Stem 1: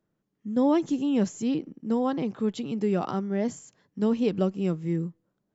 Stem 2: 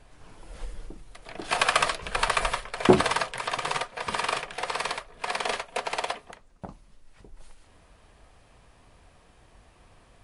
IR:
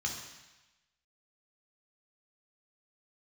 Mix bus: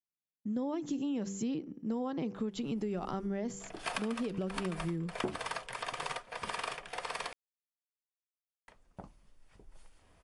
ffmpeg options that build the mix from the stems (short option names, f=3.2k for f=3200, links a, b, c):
-filter_complex "[0:a]bandreject=f=97.72:t=h:w=4,bandreject=f=195.44:t=h:w=4,bandreject=f=293.16:t=h:w=4,bandreject=f=390.88:t=h:w=4,bandreject=f=488.6:t=h:w=4,agate=range=-33dB:threshold=-47dB:ratio=3:detection=peak,alimiter=limit=-20dB:level=0:latency=1:release=113,volume=-1dB,asplit=2[a][b];[1:a]bandreject=f=4k:w=16,adelay=2350,volume=-8dB,asplit=3[c][d][e];[c]atrim=end=7.33,asetpts=PTS-STARTPTS,afade=t=out:st=7.326:d=0.004:c=hsin[f];[d]atrim=start=7.33:end=8.68,asetpts=PTS-STARTPTS,volume=0[g];[e]atrim=start=8.68,asetpts=PTS-STARTPTS,afade=t=in:d=0.004:c=hsin[h];[f][g][h]concat=n=3:v=0:a=1[i];[b]apad=whole_len=554949[j];[i][j]sidechaincompress=threshold=-35dB:ratio=4:attack=9.5:release=123[k];[a][k]amix=inputs=2:normalize=0,acompressor=threshold=-32dB:ratio=6"